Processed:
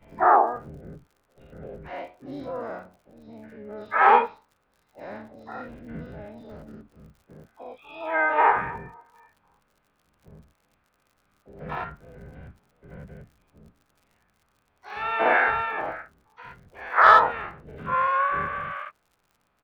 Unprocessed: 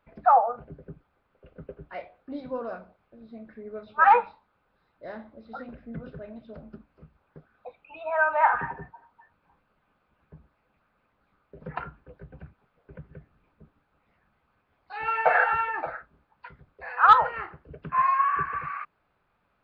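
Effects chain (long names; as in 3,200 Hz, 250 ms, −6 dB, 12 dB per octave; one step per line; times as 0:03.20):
every bin's largest magnitude spread in time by 120 ms
surface crackle 51 per second −43 dBFS
pitch-shifted copies added −12 semitones −12 dB, +5 semitones −9 dB
level −5 dB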